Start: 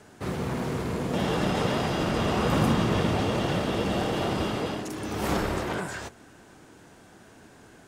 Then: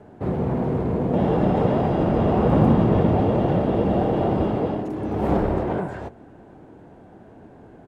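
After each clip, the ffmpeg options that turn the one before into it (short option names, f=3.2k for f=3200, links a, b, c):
-af "firequalizer=gain_entry='entry(760,0);entry(1200,-10);entry(5500,-26)':delay=0.05:min_phase=1,volume=7dB"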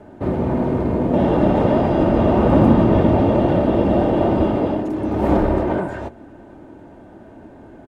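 -af "aecho=1:1:3.3:0.38,volume=4dB"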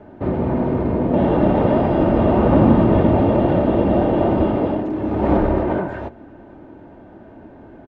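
-af "lowpass=3.5k"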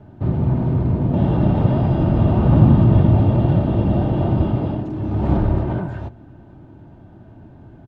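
-af "equalizer=f=125:t=o:w=1:g=9,equalizer=f=250:t=o:w=1:g=-5,equalizer=f=500:t=o:w=1:g=-10,equalizer=f=1k:t=o:w=1:g=-4,equalizer=f=2k:t=o:w=1:g=-9,volume=1.5dB"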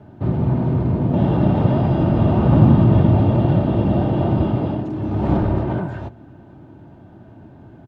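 -af "highpass=f=110:p=1,volume=2dB"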